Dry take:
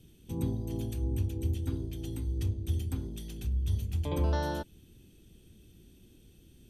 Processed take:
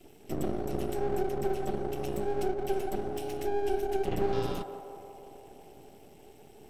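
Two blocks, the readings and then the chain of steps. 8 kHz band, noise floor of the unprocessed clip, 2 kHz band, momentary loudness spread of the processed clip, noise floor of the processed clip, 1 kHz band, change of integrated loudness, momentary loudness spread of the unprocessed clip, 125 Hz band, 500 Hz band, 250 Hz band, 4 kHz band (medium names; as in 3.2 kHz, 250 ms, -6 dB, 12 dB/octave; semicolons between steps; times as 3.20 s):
+1.0 dB, -59 dBFS, +3.5 dB, 17 LU, -54 dBFS, +8.5 dB, +1.0 dB, 8 LU, -9.5 dB, +11.5 dB, +2.0 dB, +0.5 dB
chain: compression 2:1, threshold -32 dBFS, peak gain reduction 5 dB; frequency shift -470 Hz; half-wave rectifier; on a send: band-passed feedback delay 171 ms, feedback 79%, band-pass 660 Hz, level -8 dB; on the sum: trim +6.5 dB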